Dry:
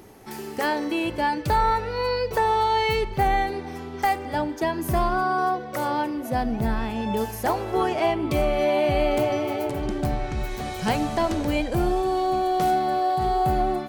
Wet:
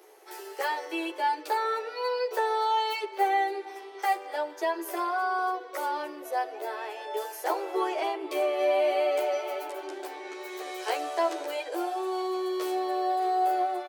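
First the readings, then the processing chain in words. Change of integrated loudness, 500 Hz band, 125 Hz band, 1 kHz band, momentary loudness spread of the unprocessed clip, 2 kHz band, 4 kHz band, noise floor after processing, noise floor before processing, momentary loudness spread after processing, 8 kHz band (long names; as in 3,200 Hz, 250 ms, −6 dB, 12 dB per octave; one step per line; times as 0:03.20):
−5.5 dB, −4.5 dB, below −40 dB, −4.5 dB, 6 LU, −4.5 dB, −4.5 dB, −44 dBFS, −36 dBFS, 11 LU, −4.5 dB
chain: Butterworth high-pass 340 Hz 72 dB per octave
barber-pole flanger 11.5 ms −0.45 Hz
level −1.5 dB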